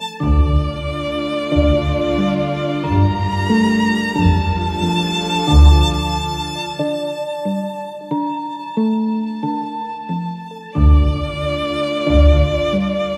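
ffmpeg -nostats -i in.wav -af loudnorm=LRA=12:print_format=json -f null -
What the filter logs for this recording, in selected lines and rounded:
"input_i" : "-17.3",
"input_tp" : "-1.5",
"input_lra" : "5.6",
"input_thresh" : "-27.4",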